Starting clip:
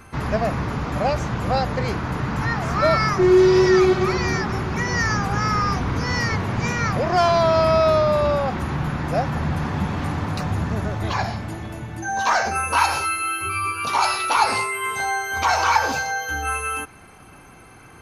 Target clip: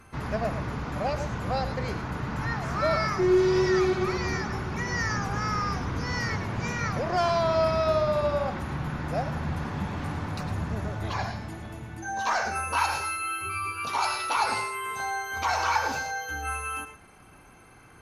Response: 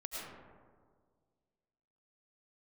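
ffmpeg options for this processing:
-filter_complex "[1:a]atrim=start_sample=2205,atrim=end_sample=3969,asetrate=34839,aresample=44100[s0];[0:a][s0]afir=irnorm=-1:irlink=0,volume=0.708"

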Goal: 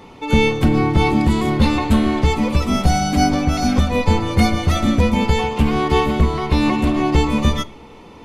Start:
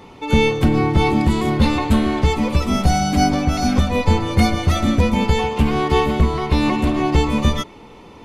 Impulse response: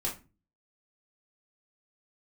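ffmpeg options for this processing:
-filter_complex "[0:a]asplit=2[s0][s1];[1:a]atrim=start_sample=2205,asetrate=26019,aresample=44100[s2];[s1][s2]afir=irnorm=-1:irlink=0,volume=0.0501[s3];[s0][s3]amix=inputs=2:normalize=0"

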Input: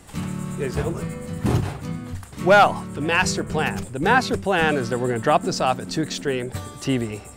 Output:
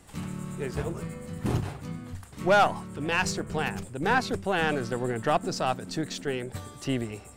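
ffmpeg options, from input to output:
-af "aeval=exprs='0.668*(cos(1*acos(clip(val(0)/0.668,-1,1)))-cos(1*PI/2))+0.0335*(cos(6*acos(clip(val(0)/0.668,-1,1)))-cos(6*PI/2))':c=same,volume=0.447"

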